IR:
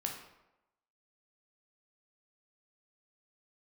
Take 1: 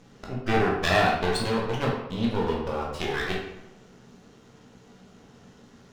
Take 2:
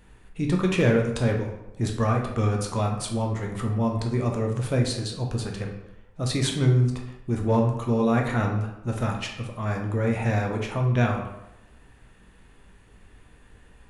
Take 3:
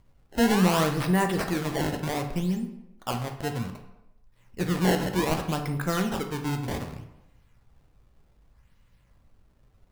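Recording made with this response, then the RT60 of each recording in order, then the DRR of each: 2; 0.95 s, 0.95 s, 0.95 s; -3.5 dB, 1.0 dB, 5.0 dB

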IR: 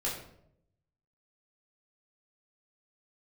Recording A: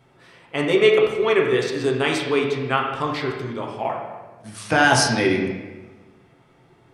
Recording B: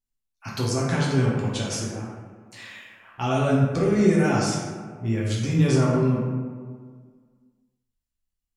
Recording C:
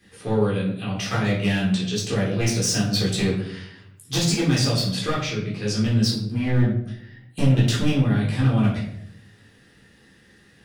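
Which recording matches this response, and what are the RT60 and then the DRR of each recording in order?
C; 1.3 s, 1.7 s, 0.75 s; -1.0 dB, -6.0 dB, -5.5 dB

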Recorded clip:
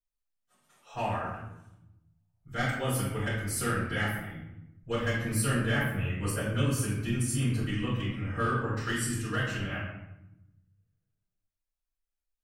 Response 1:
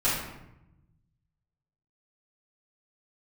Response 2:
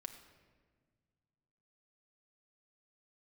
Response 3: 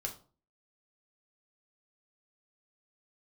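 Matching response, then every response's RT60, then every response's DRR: 1; 0.85 s, 1.6 s, 0.40 s; -12.0 dB, 5.0 dB, 0.5 dB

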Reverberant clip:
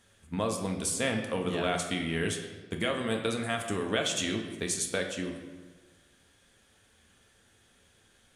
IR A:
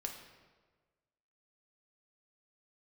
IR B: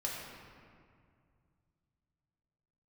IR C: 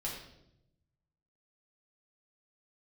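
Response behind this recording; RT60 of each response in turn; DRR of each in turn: A; 1.4 s, 2.2 s, 0.80 s; 2.0 dB, -4.0 dB, -5.0 dB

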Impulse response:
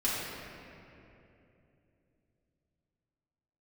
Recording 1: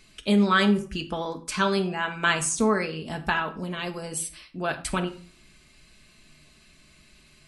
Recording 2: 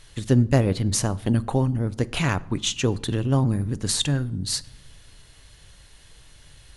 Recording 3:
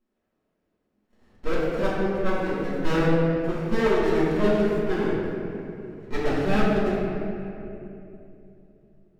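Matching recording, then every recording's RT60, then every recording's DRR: 3; 0.40 s, no single decay rate, 2.9 s; 4.0 dB, 15.5 dB, -10.0 dB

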